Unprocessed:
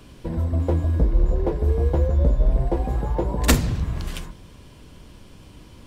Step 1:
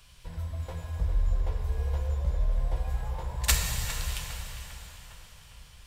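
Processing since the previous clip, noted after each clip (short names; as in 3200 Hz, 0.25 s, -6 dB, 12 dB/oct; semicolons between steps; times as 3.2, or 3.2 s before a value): passive tone stack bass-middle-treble 10-0-10; tape echo 0.404 s, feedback 59%, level -9 dB, low-pass 2800 Hz; plate-style reverb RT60 3.9 s, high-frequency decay 0.95×, DRR 2 dB; gain -1.5 dB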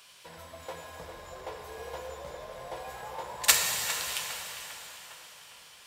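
HPF 380 Hz 12 dB/oct; gain +4.5 dB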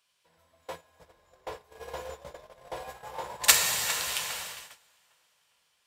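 gate -40 dBFS, range -21 dB; gain +2 dB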